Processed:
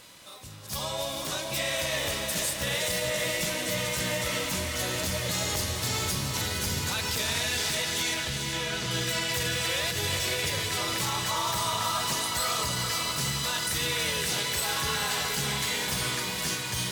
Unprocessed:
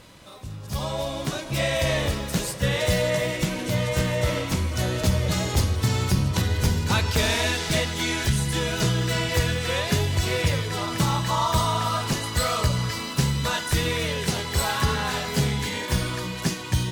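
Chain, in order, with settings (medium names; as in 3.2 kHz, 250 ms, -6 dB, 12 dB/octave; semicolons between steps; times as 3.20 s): tilt EQ +2.5 dB/octave; 9.89–10.29 s: compressor with a negative ratio -26 dBFS, ratio -0.5; peak limiter -17 dBFS, peak gain reduction 10 dB; 8.14–8.91 s: distance through air 110 m; echo that smears into a reverb 453 ms, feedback 58%, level -6 dB; trim -3 dB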